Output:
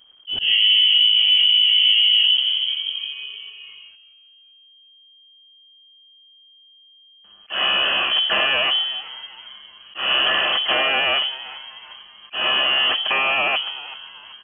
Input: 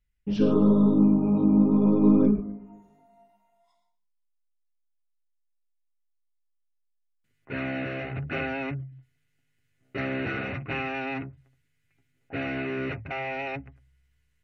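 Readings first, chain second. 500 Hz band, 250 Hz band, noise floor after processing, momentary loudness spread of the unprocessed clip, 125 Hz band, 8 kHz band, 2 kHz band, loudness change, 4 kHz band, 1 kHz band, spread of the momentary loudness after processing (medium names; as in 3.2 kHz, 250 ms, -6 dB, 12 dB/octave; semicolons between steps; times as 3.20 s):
-0.5 dB, -21.0 dB, -52 dBFS, 18 LU, under -20 dB, no reading, +14.0 dB, +9.0 dB, +35.0 dB, +10.5 dB, 20 LU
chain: companding laws mixed up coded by mu; frequency-shifting echo 384 ms, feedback 48%, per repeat -140 Hz, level -18.5 dB; in parallel at +2.5 dB: compression, threshold -30 dBFS, peak gain reduction 15 dB; on the sum: frequency inversion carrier 3.2 kHz; slow attack 169 ms; peak limiter -13.5 dBFS, peak gain reduction 8.5 dB; trim +5 dB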